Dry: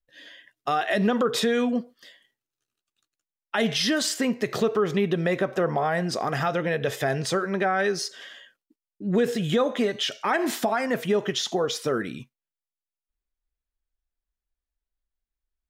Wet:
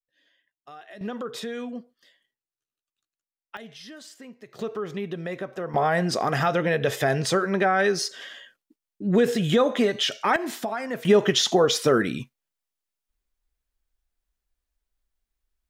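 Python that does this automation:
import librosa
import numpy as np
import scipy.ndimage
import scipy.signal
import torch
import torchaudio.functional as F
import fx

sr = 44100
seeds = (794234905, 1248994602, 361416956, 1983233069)

y = fx.gain(x, sr, db=fx.steps((0.0, -20.0), (1.01, -10.0), (3.57, -19.5), (4.59, -8.0), (5.74, 2.5), (10.36, -5.0), (11.05, 6.0)))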